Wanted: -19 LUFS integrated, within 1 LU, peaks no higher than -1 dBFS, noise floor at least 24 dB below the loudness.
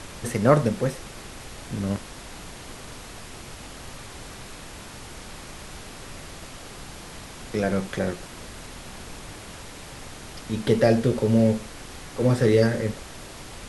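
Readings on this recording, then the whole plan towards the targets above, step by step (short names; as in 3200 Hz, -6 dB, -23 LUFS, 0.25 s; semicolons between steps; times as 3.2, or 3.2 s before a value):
noise floor -41 dBFS; noise floor target -48 dBFS; loudness -23.5 LUFS; peak -3.0 dBFS; loudness target -19.0 LUFS
-> noise print and reduce 7 dB; gain +4.5 dB; limiter -1 dBFS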